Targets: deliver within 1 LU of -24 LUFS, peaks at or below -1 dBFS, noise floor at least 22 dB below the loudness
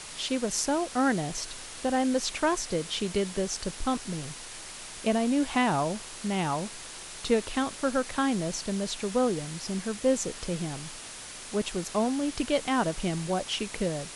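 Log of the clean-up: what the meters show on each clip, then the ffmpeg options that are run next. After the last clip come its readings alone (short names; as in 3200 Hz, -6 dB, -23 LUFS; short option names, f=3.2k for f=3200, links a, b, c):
noise floor -43 dBFS; noise floor target -52 dBFS; loudness -29.5 LUFS; peak -12.0 dBFS; loudness target -24.0 LUFS
-> -af "afftdn=nr=9:nf=-43"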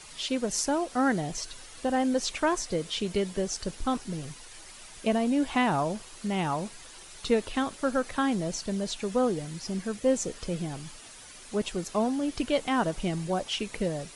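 noise floor -48 dBFS; noise floor target -52 dBFS
-> -af "afftdn=nr=6:nf=-48"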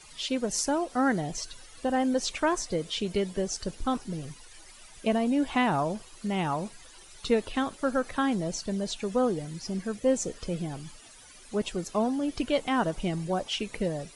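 noise floor -51 dBFS; noise floor target -52 dBFS
-> -af "afftdn=nr=6:nf=-51"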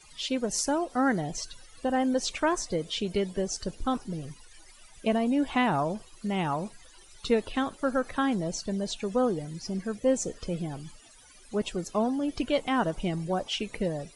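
noise floor -54 dBFS; loudness -29.5 LUFS; peak -12.5 dBFS; loudness target -24.0 LUFS
-> -af "volume=5.5dB"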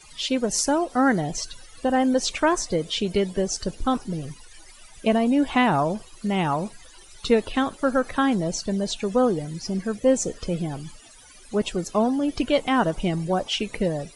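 loudness -24.0 LUFS; peak -7.0 dBFS; noise floor -48 dBFS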